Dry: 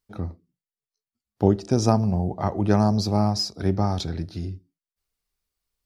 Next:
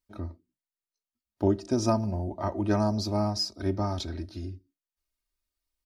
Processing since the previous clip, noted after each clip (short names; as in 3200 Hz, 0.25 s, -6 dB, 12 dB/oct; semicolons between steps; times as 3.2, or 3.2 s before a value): comb 3.2 ms, depth 77%; gain -6.5 dB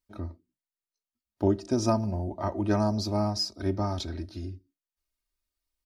nothing audible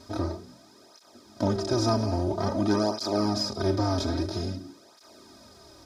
per-bin compression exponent 0.4; tape flanging out of phase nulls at 0.5 Hz, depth 5.9 ms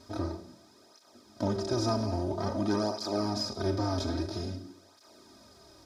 Schroeder reverb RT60 0.7 s, combs from 33 ms, DRR 12.5 dB; gain -4.5 dB